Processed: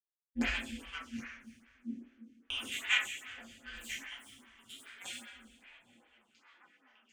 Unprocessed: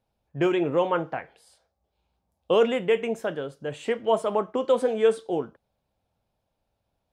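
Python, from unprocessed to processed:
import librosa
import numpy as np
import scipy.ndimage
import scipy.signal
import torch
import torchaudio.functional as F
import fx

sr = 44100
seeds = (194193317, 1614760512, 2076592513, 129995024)

p1 = fx.recorder_agc(x, sr, target_db=-19.0, rise_db_per_s=9.1, max_gain_db=30)
p2 = scipy.signal.sosfilt(scipy.signal.ellip(3, 1.0, 40, [120.0, 1800.0], 'bandstop', fs=sr, output='sos'), p1)
p3 = fx.peak_eq(p2, sr, hz=200.0, db=11.5, octaves=0.28)
p4 = p3 + 0.53 * np.pad(p3, (int(6.6 * sr / 1000.0), 0))[:len(p3)]
p5 = fx.power_curve(p4, sr, exponent=2.0)
p6 = p5 * np.sin(2.0 * np.pi * 95.0 * np.arange(len(p5)) / sr)
p7 = p6 + fx.echo_stepped(p6, sr, ms=742, hz=150.0, octaves=0.7, feedback_pct=70, wet_db=-4.0, dry=0)
p8 = fx.rev_double_slope(p7, sr, seeds[0], early_s=0.77, late_s=3.4, knee_db=-20, drr_db=-8.5)
p9 = fx.stagger_phaser(p8, sr, hz=2.5)
y = F.gain(torch.from_numpy(p9), 7.0).numpy()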